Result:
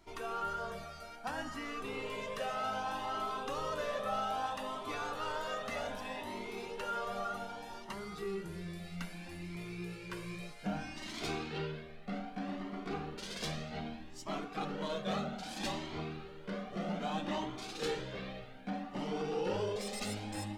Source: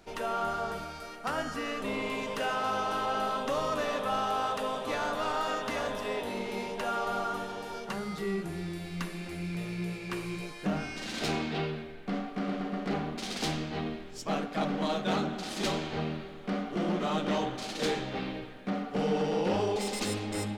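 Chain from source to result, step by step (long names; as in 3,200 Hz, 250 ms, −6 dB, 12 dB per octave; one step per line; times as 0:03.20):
convolution reverb RT60 2.1 s, pre-delay 40 ms, DRR 17.5 dB
flanger whose copies keep moving one way rising 0.63 Hz
level −2 dB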